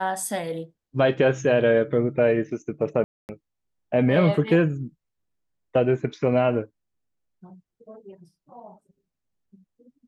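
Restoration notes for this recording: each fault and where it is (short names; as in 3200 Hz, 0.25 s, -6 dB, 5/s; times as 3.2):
3.04–3.29 gap 0.249 s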